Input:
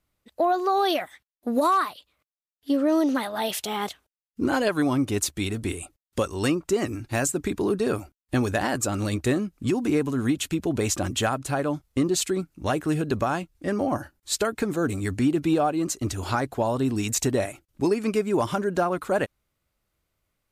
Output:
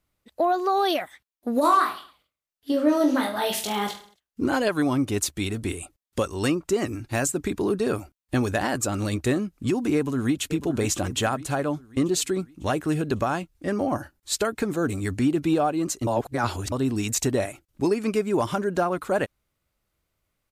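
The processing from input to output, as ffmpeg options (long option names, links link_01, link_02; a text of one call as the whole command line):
ffmpeg -i in.wav -filter_complex "[0:a]asettb=1/sr,asplit=3[link_01][link_02][link_03];[link_01]atrim=end=1.614[link_04];[link_02]atrim=start=1.61:end=4.42,asetpts=PTS-STARTPTS,afade=type=in:duration=0.004:curve=qsin,afade=type=out:start_time=2.806:duration=0.004:curve=qsin,aecho=1:1:20|43|69.45|99.87|134.8|175.1|221.3|274.5:0.631|0.398|0.251|0.158|0.1|0.0631|0.0398|0.0251,atrim=end_sample=123921[link_05];[link_03]atrim=start=4.416[link_06];[link_04][link_05]acrossfade=duration=0.004:curve1=hsin:curve2=qsin[link_07];[link_07][link_06]acrossfade=duration=0.004:curve1=qsin:curve2=hsin,asplit=2[link_08][link_09];[link_09]afade=type=in:start_time=9.95:duration=0.01,afade=type=out:start_time=10.49:duration=0.01,aecho=0:1:550|1100|1650|2200|2750:0.237137|0.118569|0.0592843|0.0296422|0.0148211[link_10];[link_08][link_10]amix=inputs=2:normalize=0,asplit=3[link_11][link_12][link_13];[link_11]atrim=end=16.072[link_14];[link_12]atrim=start=16.068:end=16.722,asetpts=PTS-STARTPTS,areverse[link_15];[link_13]atrim=start=16.718[link_16];[link_14][link_15]acrossfade=duration=0.004:curve1=hsin:curve2=hsin[link_17];[link_17][link_16]acrossfade=duration=0.004:curve1=hsin:curve2=hsin" out.wav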